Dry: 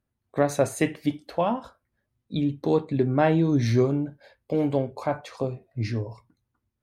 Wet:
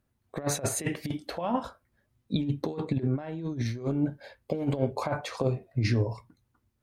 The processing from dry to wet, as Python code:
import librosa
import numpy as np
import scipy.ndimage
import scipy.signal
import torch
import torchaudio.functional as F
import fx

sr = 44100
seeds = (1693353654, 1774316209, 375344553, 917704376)

y = fx.over_compress(x, sr, threshold_db=-27.0, ratio=-0.5)